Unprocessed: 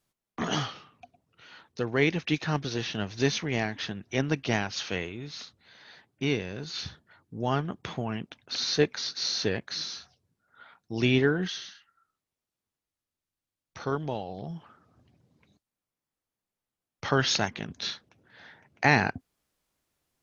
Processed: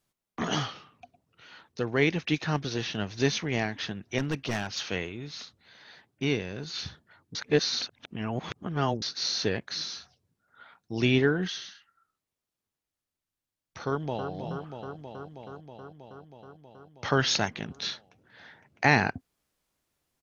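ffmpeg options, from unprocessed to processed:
ffmpeg -i in.wav -filter_complex "[0:a]asettb=1/sr,asplit=3[link_01][link_02][link_03];[link_01]atrim=end=4.184[link_04];[link_02]atrim=start=4.18:end=4.86,asetpts=PTS-STARTPTS,afade=type=in:duration=0.004:curve=qsin,afade=type=out:start_time=0.676:duration=0.004:curve=qsin,volume=24dB,asoftclip=hard,volume=-24dB[link_05];[link_03]atrim=start=4.856[link_06];[link_04][link_05]acrossfade=duration=0.004:curve1=hsin:curve2=qsin[link_07];[link_07][link_06]acrossfade=duration=0.004:curve1=qsin:curve2=hsin,asplit=2[link_08][link_09];[link_09]afade=type=in:start_time=13.86:duration=0.01,afade=type=out:start_time=14.32:duration=0.01,aecho=0:1:320|640|960|1280|1600|1920|2240|2560|2880|3200|3520|3840:0.446684|0.357347|0.285877|0.228702|0.182962|0.146369|0.117095|0.0936763|0.0749411|0.0599529|0.0479623|0.0383698[link_10];[link_08][link_10]amix=inputs=2:normalize=0,asplit=3[link_11][link_12][link_13];[link_11]atrim=end=7.352[link_14];[link_12]atrim=start=7.348:end=9.022,asetpts=PTS-STARTPTS,areverse[link_15];[link_13]atrim=start=9.018[link_16];[link_14][link_15]acrossfade=duration=0.004:curve1=hsin:curve2=hsin[link_17];[link_17][link_16]acrossfade=duration=0.004:curve1=hsin:curve2=hsin" out.wav

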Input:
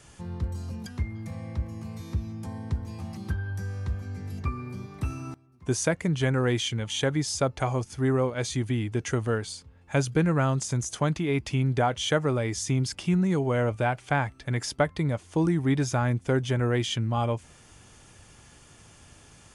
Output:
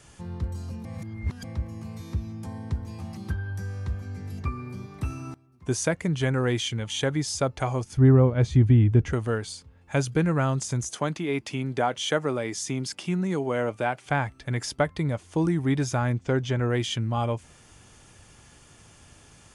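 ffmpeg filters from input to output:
ffmpeg -i in.wav -filter_complex "[0:a]asettb=1/sr,asplit=3[link_01][link_02][link_03];[link_01]atrim=end=7.974[link_04];[link_02]atrim=start=7.97:end=9.13,asetpts=PTS-STARTPTS,afade=type=in:duration=0.004:curve=qsin,afade=type=out:start_time=1.156:duration=0.004:curve=qsin,aemphasis=mode=reproduction:type=riaa[link_05];[link_03]atrim=start=9.126[link_06];[link_04][link_05]acrossfade=duration=0.004:curve1=hsin:curve2=qsin[link_07];[link_07][link_06]acrossfade=duration=0.004:curve1=qsin:curve2=hsin,asettb=1/sr,asplit=3[link_08][link_09][link_10];[link_08]atrim=end=10.904[link_11];[link_09]atrim=start=10.9:end=14.06,asetpts=PTS-STARTPTS,afade=type=in:duration=0.004:curve=qsin,afade=type=out:start_time=3.156:duration=0.004:curve=qsin,highpass=190[link_12];[link_10]atrim=start=14.056[link_13];[link_11][link_12]acrossfade=duration=0.004:curve1=hsin:curve2=qsin[link_14];[link_14][link_13]acrossfade=duration=0.004:curve1=qsin:curve2=hsin,asettb=1/sr,asplit=3[link_15][link_16][link_17];[link_15]atrim=end=16.124[link_18];[link_16]atrim=start=16.12:end=16.7,asetpts=PTS-STARTPTS,afade=type=in:duration=0.004:curve=qsin,afade=type=out:start_time=0.576:duration=0.004:curve=qsin,lowpass=frequency=7200:width=0.5412,lowpass=frequency=7200:width=1.3066[link_19];[link_17]atrim=start=16.696[link_20];[link_18][link_19]acrossfade=duration=0.004:curve1=hsin:curve2=qsin[link_21];[link_21][link_20]acrossfade=duration=0.004:curve1=qsin:curve2=hsin,asplit=3[link_22][link_23][link_24];[link_22]atrim=end=0.852[link_25];[link_23]atrim=start=0.848:end=1.442,asetpts=PTS-STARTPTS,areverse[link_26];[link_24]atrim=start=1.438[link_27];[link_25][link_26]acrossfade=duration=0.004:curve1=hsin:curve2=hsin[link_28];[link_28][link_27]acrossfade=duration=0.004:curve1=hsin:curve2=hsin" out.wav

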